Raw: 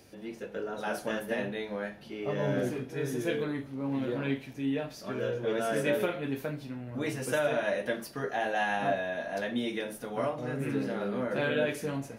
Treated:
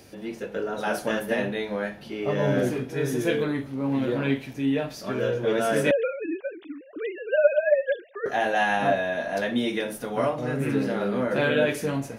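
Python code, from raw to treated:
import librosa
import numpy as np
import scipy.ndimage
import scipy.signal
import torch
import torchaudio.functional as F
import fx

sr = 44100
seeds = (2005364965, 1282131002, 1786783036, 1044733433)

y = fx.sine_speech(x, sr, at=(5.91, 8.26))
y = F.gain(torch.from_numpy(y), 6.5).numpy()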